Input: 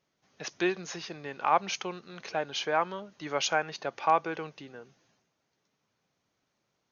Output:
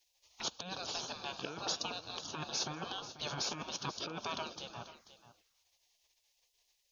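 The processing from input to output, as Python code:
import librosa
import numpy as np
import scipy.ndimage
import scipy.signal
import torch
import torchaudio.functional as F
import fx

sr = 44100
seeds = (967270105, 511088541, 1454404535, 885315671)

y = fx.spec_gate(x, sr, threshold_db=-15, keep='weak')
y = fx.over_compress(y, sr, threshold_db=-45.0, ratio=-1.0)
y = fx.env_phaser(y, sr, low_hz=220.0, high_hz=2000.0, full_db=-51.0)
y = y + 10.0 ** (-14.5 / 20.0) * np.pad(y, (int(488 * sr / 1000.0), 0))[:len(y)]
y = F.gain(torch.from_numpy(y), 10.0).numpy()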